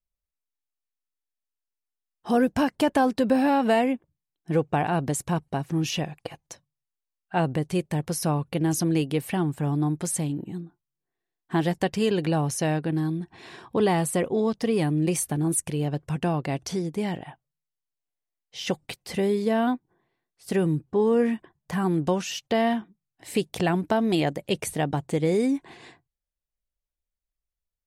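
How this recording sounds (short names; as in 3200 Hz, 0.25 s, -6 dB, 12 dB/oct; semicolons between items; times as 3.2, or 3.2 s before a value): noise floor -87 dBFS; spectral tilt -5.5 dB/oct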